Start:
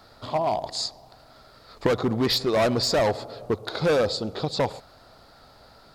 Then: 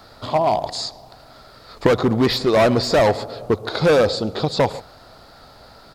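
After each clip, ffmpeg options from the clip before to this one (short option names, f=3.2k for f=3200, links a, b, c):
-filter_complex "[0:a]acrossover=split=3100[a][b];[a]aecho=1:1:144:0.0944[c];[b]alimiter=level_in=3.5dB:limit=-24dB:level=0:latency=1:release=17,volume=-3.5dB[d];[c][d]amix=inputs=2:normalize=0,volume=6.5dB"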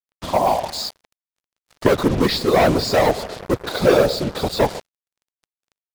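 -af "afftfilt=real='hypot(re,im)*cos(2*PI*random(0))':imag='hypot(re,im)*sin(2*PI*random(1))':win_size=512:overlap=0.75,acrusher=bits=5:mix=0:aa=0.5,volume=6dB"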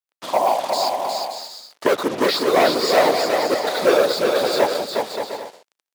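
-filter_complex "[0:a]highpass=380,asplit=2[a][b];[b]aecho=0:1:360|576|705.6|783.4|830:0.631|0.398|0.251|0.158|0.1[c];[a][c]amix=inputs=2:normalize=0"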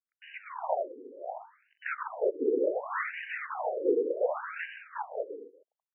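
-af "afftfilt=real='re*between(b*sr/4096,140,3000)':imag='im*between(b*sr/4096,140,3000)':win_size=4096:overlap=0.75,afftfilt=real='re*between(b*sr/1024,340*pow(2200/340,0.5+0.5*sin(2*PI*0.68*pts/sr))/1.41,340*pow(2200/340,0.5+0.5*sin(2*PI*0.68*pts/sr))*1.41)':imag='im*between(b*sr/1024,340*pow(2200/340,0.5+0.5*sin(2*PI*0.68*pts/sr))/1.41,340*pow(2200/340,0.5+0.5*sin(2*PI*0.68*pts/sr))*1.41)':win_size=1024:overlap=0.75,volume=-6.5dB"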